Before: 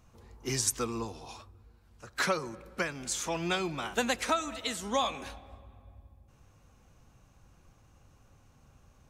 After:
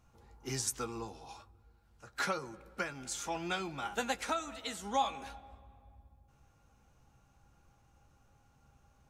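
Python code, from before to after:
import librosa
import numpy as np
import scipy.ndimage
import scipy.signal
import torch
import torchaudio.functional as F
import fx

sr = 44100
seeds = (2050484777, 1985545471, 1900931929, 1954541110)

y = fx.doubler(x, sr, ms=15.0, db=-10.5)
y = fx.small_body(y, sr, hz=(820.0, 1400.0), ring_ms=85, db=12)
y = F.gain(torch.from_numpy(y), -6.5).numpy()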